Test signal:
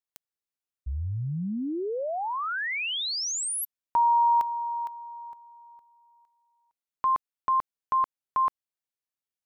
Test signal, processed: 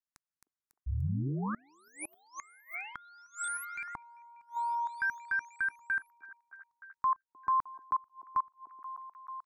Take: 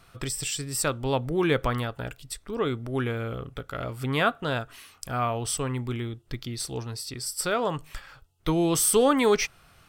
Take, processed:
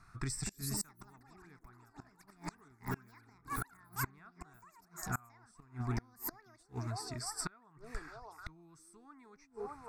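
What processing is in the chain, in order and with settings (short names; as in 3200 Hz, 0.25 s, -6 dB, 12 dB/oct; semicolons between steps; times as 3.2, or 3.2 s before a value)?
LPF 7100 Hz 12 dB/oct; echoes that change speed 0.319 s, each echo +7 st, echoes 3; delay with a stepping band-pass 0.307 s, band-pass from 390 Hz, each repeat 0.7 oct, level -8.5 dB; flipped gate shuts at -19 dBFS, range -29 dB; fixed phaser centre 1300 Hz, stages 4; gain -3 dB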